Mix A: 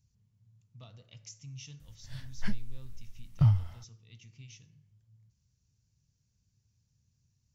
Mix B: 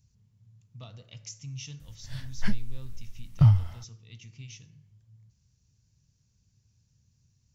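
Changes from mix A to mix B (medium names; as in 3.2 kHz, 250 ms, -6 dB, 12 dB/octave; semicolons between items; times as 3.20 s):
speech +6.0 dB; background +5.0 dB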